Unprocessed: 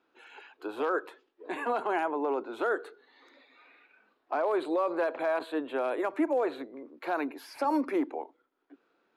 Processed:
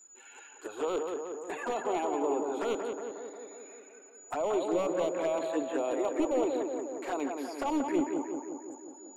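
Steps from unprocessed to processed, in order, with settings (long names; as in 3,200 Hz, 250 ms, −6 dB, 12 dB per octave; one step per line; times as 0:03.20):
wavefolder on the positive side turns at −23.5 dBFS
steady tone 6,900 Hz −50 dBFS
flanger swept by the level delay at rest 10.2 ms, full sweep at −27 dBFS
on a send: tape delay 180 ms, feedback 74%, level −3 dB, low-pass 1,800 Hz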